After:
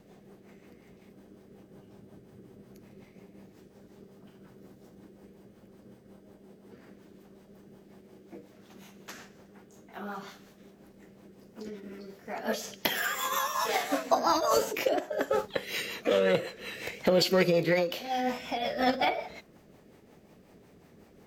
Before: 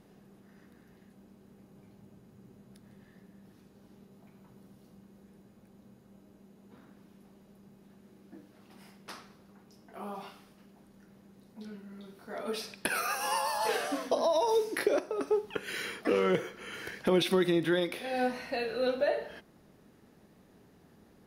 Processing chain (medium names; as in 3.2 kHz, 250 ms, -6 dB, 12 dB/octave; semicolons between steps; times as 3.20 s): formant shift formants +4 st; rotary cabinet horn 5.5 Hz; trim +5 dB